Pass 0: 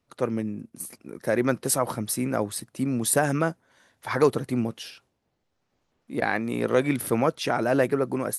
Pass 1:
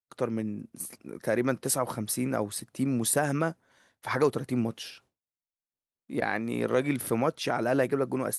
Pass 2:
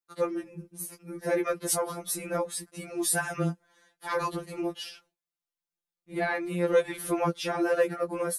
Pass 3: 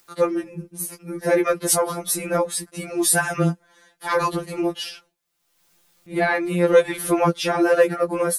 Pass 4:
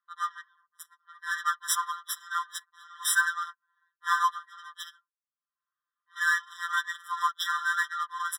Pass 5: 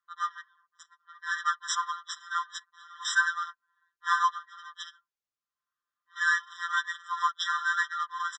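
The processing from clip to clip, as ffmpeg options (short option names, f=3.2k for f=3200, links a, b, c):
-filter_complex "[0:a]agate=range=-33dB:threshold=-56dB:ratio=3:detection=peak,asplit=2[a][b];[b]alimiter=limit=-17dB:level=0:latency=1:release=488,volume=-0.5dB[c];[a][c]amix=inputs=2:normalize=0,volume=-7dB"
-af "afftfilt=real='re*2.83*eq(mod(b,8),0)':imag='im*2.83*eq(mod(b,8),0)':win_size=2048:overlap=0.75,volume=2.5dB"
-af "acompressor=mode=upward:threshold=-50dB:ratio=2.5,volume=8.5dB"
-af "adynamicsmooth=sensitivity=4.5:basefreq=540,afftfilt=real='re*eq(mod(floor(b*sr/1024/1000),2),1)':imag='im*eq(mod(floor(b*sr/1024/1000),2),1)':win_size=1024:overlap=0.75"
-af "aresample=16000,aresample=44100"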